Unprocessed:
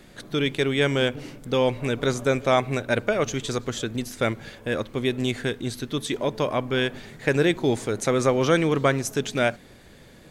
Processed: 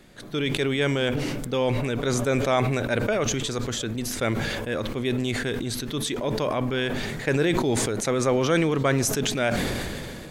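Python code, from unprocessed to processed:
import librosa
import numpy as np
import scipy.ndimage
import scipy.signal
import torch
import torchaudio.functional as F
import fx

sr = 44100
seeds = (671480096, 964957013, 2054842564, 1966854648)

y = fx.sustainer(x, sr, db_per_s=22.0)
y = y * librosa.db_to_amplitude(-3.0)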